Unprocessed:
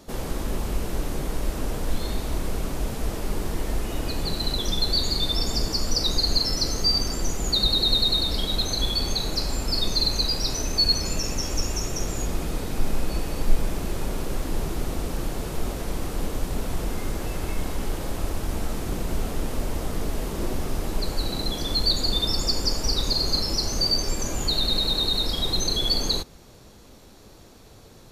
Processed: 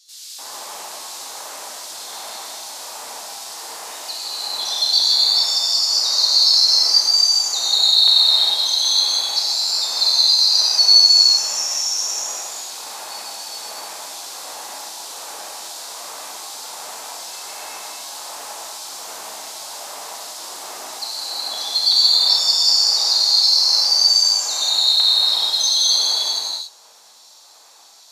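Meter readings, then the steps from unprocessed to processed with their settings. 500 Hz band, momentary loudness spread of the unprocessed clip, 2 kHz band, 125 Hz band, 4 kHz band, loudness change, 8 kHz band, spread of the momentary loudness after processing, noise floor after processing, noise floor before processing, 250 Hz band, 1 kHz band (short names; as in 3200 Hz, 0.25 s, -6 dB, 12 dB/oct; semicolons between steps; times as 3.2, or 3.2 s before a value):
-7.0 dB, 10 LU, +1.5 dB, under -30 dB, +11.0 dB, +12.0 dB, +10.5 dB, 20 LU, -47 dBFS, -48 dBFS, under -20 dB, +4.0 dB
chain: bell 7000 Hz +8.5 dB 1.5 oct; LFO high-pass square 1.3 Hz 860–4100 Hz; non-linear reverb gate 0.48 s flat, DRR -7.5 dB; gain -7.5 dB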